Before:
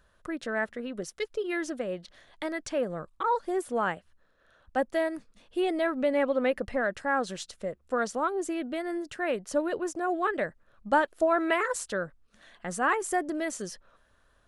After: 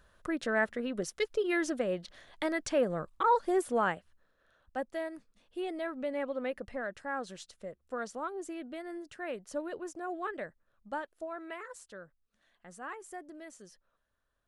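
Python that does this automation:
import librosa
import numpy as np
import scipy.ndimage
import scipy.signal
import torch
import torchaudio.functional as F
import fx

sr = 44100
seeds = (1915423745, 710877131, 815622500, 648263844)

y = fx.gain(x, sr, db=fx.line((3.59, 1.0), (4.88, -9.0), (10.3, -9.0), (11.33, -16.5)))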